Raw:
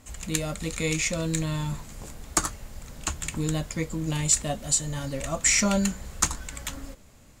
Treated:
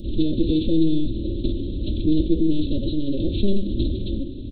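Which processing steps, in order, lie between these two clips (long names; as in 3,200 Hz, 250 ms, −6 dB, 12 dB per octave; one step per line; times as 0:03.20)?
compressor on every frequency bin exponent 0.6
dynamic equaliser 460 Hz, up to +4 dB, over −44 dBFS, Q 4.9
linear-prediction vocoder at 8 kHz pitch kept
convolution reverb, pre-delay 4 ms, DRR 7.5 dB
reversed playback
upward compression, threshold −34 dBFS
reversed playback
phase-vocoder stretch with locked phases 0.61×
inverse Chebyshev band-stop filter 760–2,200 Hz, stop band 50 dB
comb filter 3.4 ms, depth 65%
level that may rise only so fast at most 540 dB per second
level +8.5 dB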